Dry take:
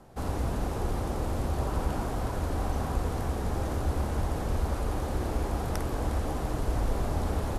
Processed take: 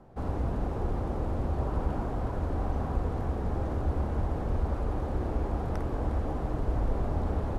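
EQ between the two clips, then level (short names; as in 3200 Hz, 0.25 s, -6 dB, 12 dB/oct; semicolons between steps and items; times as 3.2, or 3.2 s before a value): LPF 1100 Hz 6 dB/oct; 0.0 dB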